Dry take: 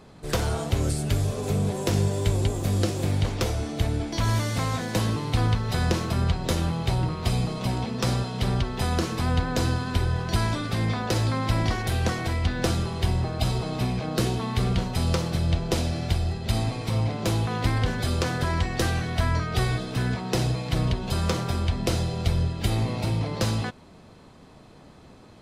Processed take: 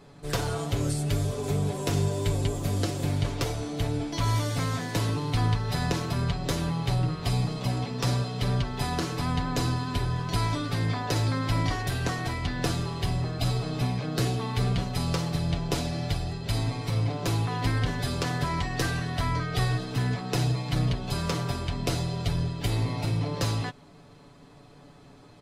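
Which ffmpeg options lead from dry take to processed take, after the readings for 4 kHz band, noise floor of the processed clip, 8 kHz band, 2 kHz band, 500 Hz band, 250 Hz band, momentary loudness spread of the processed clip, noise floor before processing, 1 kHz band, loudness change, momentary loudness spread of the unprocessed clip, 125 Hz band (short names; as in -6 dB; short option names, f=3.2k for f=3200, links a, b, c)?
-1.5 dB, -51 dBFS, -2.0 dB, -2.0 dB, -3.0 dB, -2.5 dB, 3 LU, -49 dBFS, -1.5 dB, -2.5 dB, 2 LU, -2.0 dB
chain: -af "aecho=1:1:7:0.65,volume=-3.5dB"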